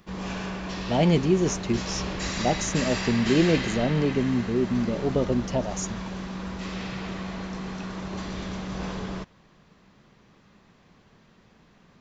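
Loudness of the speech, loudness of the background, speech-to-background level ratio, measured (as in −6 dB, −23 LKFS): −25.5 LKFS, −32.5 LKFS, 7.0 dB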